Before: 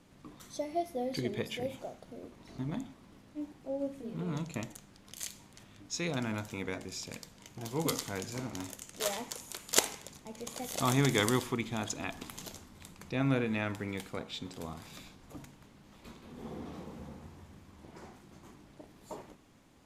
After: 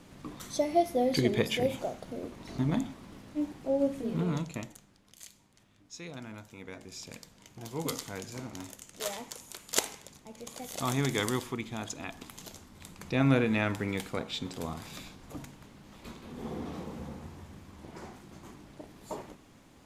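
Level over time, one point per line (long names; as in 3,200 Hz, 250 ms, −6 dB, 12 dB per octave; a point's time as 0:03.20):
0:04.17 +8 dB
0:04.49 +1 dB
0:05.18 −9 dB
0:06.55 −9 dB
0:07.05 −2 dB
0:12.40 −2 dB
0:13.11 +5 dB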